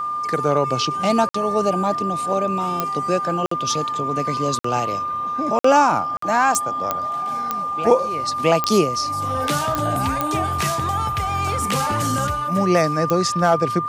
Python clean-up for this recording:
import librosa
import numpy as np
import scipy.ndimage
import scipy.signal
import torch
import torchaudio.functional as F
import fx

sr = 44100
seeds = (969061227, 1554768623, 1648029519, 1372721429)

y = fx.fix_declick_ar(x, sr, threshold=10.0)
y = fx.notch(y, sr, hz=1200.0, q=30.0)
y = fx.fix_interpolate(y, sr, at_s=(1.29, 3.46, 4.59, 5.59, 6.17), length_ms=54.0)